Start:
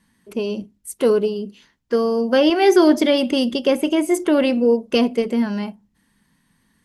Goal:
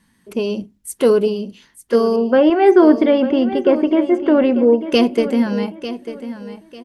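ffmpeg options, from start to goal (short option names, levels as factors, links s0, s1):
-filter_complex "[0:a]asettb=1/sr,asplit=3[s0][s1][s2];[s0]atrim=end=2.164[s3];[s1]atrim=start=2.16:end=4.81,asetpts=PTS-STARTPTS,afade=t=in:d=0.004:c=qsin,afade=t=out:st=2.646:d=0.004:c=qsin,lowpass=1700[s4];[s2]atrim=start=4.806[s5];[s3][s4]acrossfade=d=0.004:c1=hsin:c2=qsin[s6];[s6][s5]acrossfade=d=0.004:c1=qsin:c2=hsin,aecho=1:1:896|1792|2688:0.237|0.0664|0.0186,volume=1.41"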